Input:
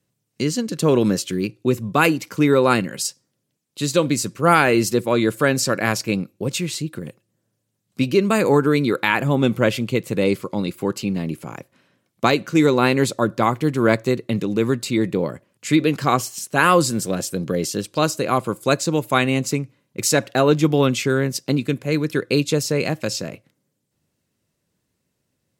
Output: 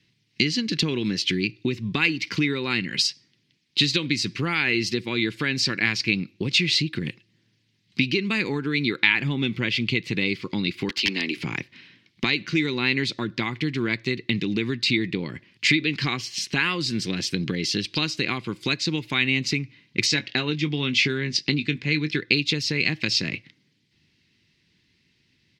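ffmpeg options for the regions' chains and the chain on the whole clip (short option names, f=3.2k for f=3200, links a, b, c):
-filter_complex "[0:a]asettb=1/sr,asplit=3[a][b][c];[a]atrim=end=10.894[d];[b]atrim=start=10.89:end=11.37,asetpts=PTS-STARTPTS,afade=t=in:d=0.004:c=qsin,afade=t=out:st=0.476:d=0.004:c=qsin,highpass=f=260:w=0.5412,highpass=f=260:w=1.3066,lowshelf=f=430:g=-6.5,aeval=exprs='(mod(13.3*val(0)+1,2)-1)/13.3':c=same[e];[c]atrim=start=11.366[f];[d][e]acrossfade=d=0.004:c1=hsin:c2=qsin[g];[g][f]acrossfade=d=0.004:c1=qsin:c2=hsin,asettb=1/sr,asplit=3[h][i][j];[h]atrim=end=20.064[k];[i]atrim=start=20.06:end=22.19,asetpts=PTS-STARTPTS,afade=t=in:d=0.004:c=qsin,afade=t=out:st=2.126:d=0.004:c=qsin,lowpass=f=8.3k:w=0.5412,lowpass=f=8.3k:w=1.3066,asplit=2[l][m];[m]adelay=20,volume=-11dB[n];[l][n]amix=inputs=2:normalize=0,atrim=end_sample=93933[o];[j]atrim=start=22.186[p];[k][o]acrossfade=d=0.004:c1=hsin:c2=qsin[q];[q][p]acrossfade=d=0.004:c1=qsin:c2=hsin,acompressor=threshold=-28dB:ratio=6,firequalizer=gain_entry='entry(350,0);entry(570,-16);entry(870,-6);entry(1300,-6);entry(2000,11);entry(4700,9);entry(7400,-11);entry(12000,-19)':delay=0.05:min_phase=1,volume=6dB"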